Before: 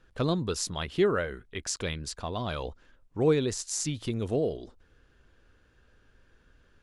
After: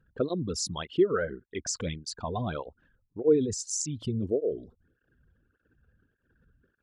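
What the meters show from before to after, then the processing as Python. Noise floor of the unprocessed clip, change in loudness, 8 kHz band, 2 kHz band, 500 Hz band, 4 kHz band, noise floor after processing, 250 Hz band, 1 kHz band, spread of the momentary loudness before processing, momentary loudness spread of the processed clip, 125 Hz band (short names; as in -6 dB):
-64 dBFS, 0.0 dB, +0.5 dB, -3.5 dB, +1.0 dB, -2.5 dB, -77 dBFS, +0.5 dB, -2.0 dB, 11 LU, 11 LU, -2.5 dB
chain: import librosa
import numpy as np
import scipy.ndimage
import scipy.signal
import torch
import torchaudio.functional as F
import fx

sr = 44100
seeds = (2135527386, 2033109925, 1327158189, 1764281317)

y = fx.envelope_sharpen(x, sr, power=2.0)
y = fx.flanger_cancel(y, sr, hz=1.7, depth_ms=3.6)
y = y * 10.0 ** (3.5 / 20.0)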